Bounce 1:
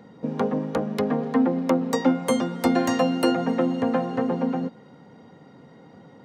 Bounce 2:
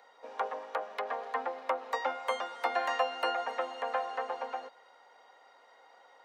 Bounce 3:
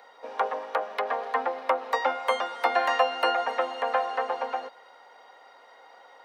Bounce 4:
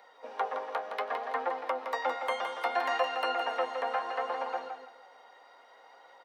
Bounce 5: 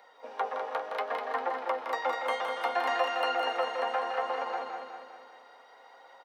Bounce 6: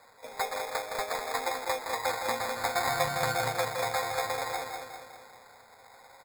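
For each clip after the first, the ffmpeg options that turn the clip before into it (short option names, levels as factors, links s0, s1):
-filter_complex "[0:a]acrossover=split=3300[s0][s1];[s1]acompressor=threshold=0.00224:ratio=4:attack=1:release=60[s2];[s0][s2]amix=inputs=2:normalize=0,highpass=f=660:w=0.5412,highpass=f=660:w=1.3066,volume=0.794"
-af "equalizer=f=7100:t=o:w=0.39:g=-5.5,volume=2.24"
-filter_complex "[0:a]asplit=2[s0][s1];[s1]alimiter=limit=0.15:level=0:latency=1:release=172,volume=1.12[s2];[s0][s2]amix=inputs=2:normalize=0,aecho=1:1:165|330|495:0.447|0.116|0.0302,flanger=delay=5:depth=9.3:regen=61:speed=0.65:shape=triangular,volume=0.447"
-af "aecho=1:1:200|400|600|800|1000|1200|1400:0.501|0.271|0.146|0.0789|0.0426|0.023|0.0124"
-af "acrusher=samples=15:mix=1:aa=0.000001"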